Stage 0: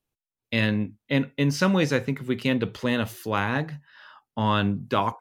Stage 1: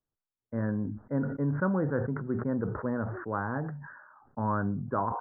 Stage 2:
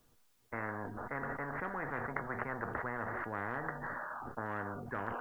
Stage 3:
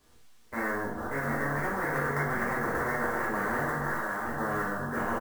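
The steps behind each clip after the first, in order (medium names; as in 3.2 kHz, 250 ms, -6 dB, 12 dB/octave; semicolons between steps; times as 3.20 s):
steep low-pass 1.6 kHz 72 dB/octave; decay stretcher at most 52 dB/s; trim -6.5 dB
feedback comb 240 Hz, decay 0.19 s, harmonics all, mix 60%; spectrum-flattening compressor 10:1; trim +4.5 dB
sample-rate reducer 19 kHz, jitter 20%; delay 723 ms -5.5 dB; reverberation, pre-delay 3 ms, DRR -7 dB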